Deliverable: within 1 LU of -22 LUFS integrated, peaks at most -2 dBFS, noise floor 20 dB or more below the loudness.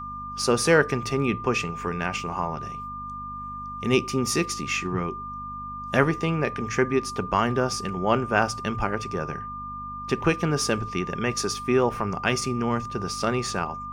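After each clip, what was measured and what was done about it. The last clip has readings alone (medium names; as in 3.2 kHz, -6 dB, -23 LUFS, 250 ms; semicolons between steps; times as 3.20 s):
hum 50 Hz; highest harmonic 250 Hz; hum level -40 dBFS; steady tone 1.2 kHz; tone level -33 dBFS; loudness -26.0 LUFS; peak level -3.0 dBFS; loudness target -22.0 LUFS
-> de-hum 50 Hz, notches 5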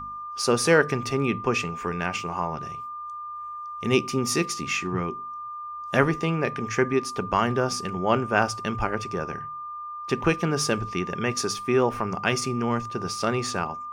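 hum not found; steady tone 1.2 kHz; tone level -33 dBFS
-> band-stop 1.2 kHz, Q 30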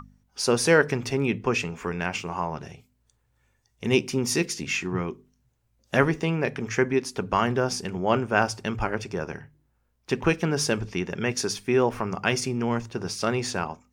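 steady tone not found; loudness -26.0 LUFS; peak level -3.0 dBFS; loudness target -22.0 LUFS
-> trim +4 dB; peak limiter -2 dBFS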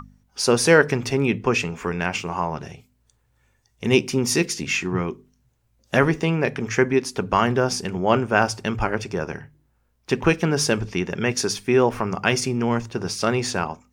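loudness -22.0 LUFS; peak level -2.0 dBFS; noise floor -66 dBFS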